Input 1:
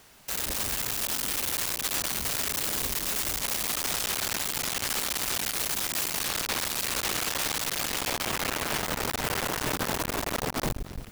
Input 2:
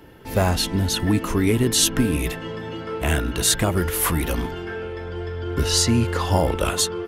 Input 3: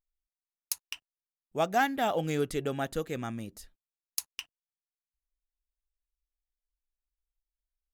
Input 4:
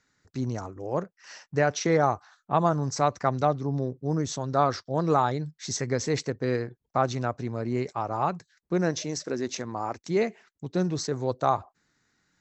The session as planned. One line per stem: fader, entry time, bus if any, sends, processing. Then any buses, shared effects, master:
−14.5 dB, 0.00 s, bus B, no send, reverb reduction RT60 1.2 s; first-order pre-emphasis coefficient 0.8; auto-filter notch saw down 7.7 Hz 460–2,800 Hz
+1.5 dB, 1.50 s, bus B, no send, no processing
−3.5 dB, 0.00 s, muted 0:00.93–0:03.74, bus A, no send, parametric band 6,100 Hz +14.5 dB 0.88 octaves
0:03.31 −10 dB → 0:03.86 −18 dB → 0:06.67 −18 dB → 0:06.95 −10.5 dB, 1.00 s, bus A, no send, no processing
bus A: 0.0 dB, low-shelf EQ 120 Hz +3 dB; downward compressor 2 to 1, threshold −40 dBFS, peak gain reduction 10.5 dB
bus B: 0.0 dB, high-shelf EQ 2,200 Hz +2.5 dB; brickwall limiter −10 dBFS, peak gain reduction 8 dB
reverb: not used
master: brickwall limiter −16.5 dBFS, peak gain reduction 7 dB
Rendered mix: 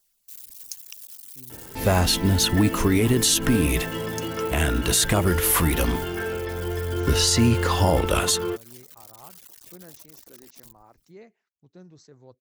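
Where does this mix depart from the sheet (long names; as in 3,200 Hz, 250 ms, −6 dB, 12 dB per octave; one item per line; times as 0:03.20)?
stem 4 −10.0 dB → −21.5 dB
master: missing brickwall limiter −16.5 dBFS, peak gain reduction 7 dB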